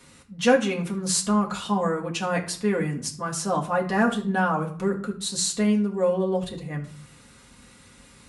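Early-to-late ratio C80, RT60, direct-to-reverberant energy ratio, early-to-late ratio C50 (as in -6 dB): 16.5 dB, 0.50 s, -1.5 dB, 12.0 dB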